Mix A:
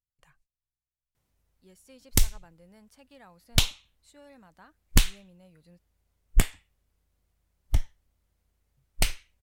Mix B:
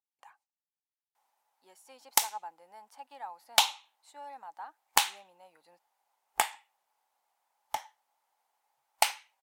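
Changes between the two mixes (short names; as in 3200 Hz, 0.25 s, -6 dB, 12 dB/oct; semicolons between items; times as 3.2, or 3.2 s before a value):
speech: add bell 290 Hz +9.5 dB 1.1 oct; master: add resonant high-pass 840 Hz, resonance Q 8.5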